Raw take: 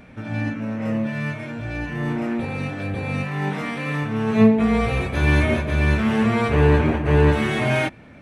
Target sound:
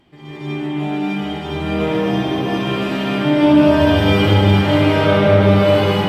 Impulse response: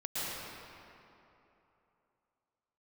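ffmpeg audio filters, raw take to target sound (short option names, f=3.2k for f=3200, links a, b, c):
-filter_complex "[0:a]dynaudnorm=f=280:g=13:m=7dB[a];[1:a]atrim=start_sample=2205,asetrate=23373,aresample=44100[b];[a][b]afir=irnorm=-1:irlink=0,asetrate=59535,aresample=44100,volume=-8.5dB"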